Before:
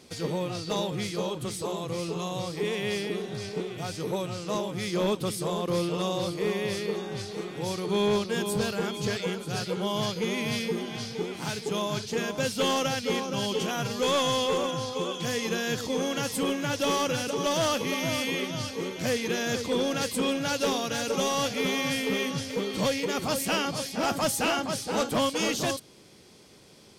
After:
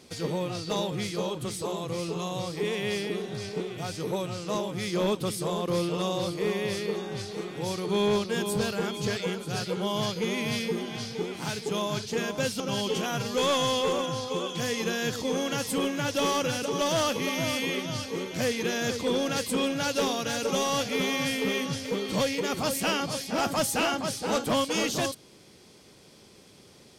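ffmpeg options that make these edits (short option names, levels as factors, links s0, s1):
-filter_complex "[0:a]asplit=2[s0][s1];[s0]atrim=end=12.602[s2];[s1]atrim=start=13.248[s3];[s2][s3]acrossfade=d=0.004:c1=hsin:c2=hsin"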